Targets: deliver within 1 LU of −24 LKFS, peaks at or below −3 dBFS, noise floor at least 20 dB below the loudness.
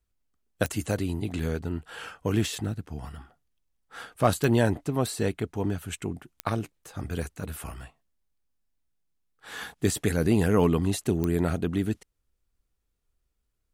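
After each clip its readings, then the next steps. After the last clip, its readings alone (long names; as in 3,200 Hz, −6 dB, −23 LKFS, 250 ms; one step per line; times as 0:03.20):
number of clicks 4; integrated loudness −28.0 LKFS; sample peak −8.0 dBFS; target loudness −24.0 LKFS
→ click removal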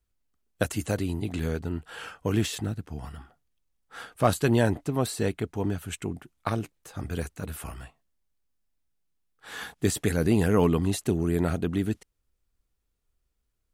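number of clicks 0; integrated loudness −28.0 LKFS; sample peak −8.0 dBFS; target loudness −24.0 LKFS
→ level +4 dB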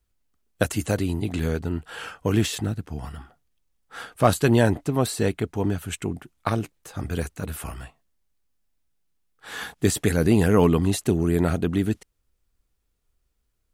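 integrated loudness −24.0 LKFS; sample peak −4.0 dBFS; background noise floor −73 dBFS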